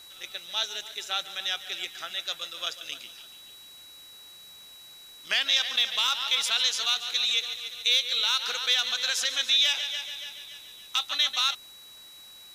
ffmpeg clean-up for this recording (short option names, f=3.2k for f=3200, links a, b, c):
-af "adeclick=t=4,bandreject=f=3.9k:w=30,afftdn=nr=25:nf=-49"